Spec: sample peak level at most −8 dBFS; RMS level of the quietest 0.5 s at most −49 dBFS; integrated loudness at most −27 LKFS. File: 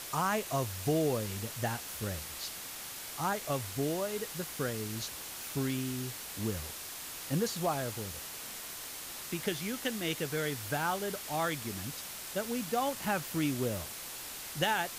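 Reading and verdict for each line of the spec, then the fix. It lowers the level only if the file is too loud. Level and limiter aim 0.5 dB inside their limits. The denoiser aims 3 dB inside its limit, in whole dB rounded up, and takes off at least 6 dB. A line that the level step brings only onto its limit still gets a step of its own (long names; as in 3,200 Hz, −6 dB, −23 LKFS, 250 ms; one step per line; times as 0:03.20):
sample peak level −17.0 dBFS: in spec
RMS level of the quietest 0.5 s −43 dBFS: out of spec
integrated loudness −35.0 LKFS: in spec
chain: broadband denoise 9 dB, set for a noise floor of −43 dBFS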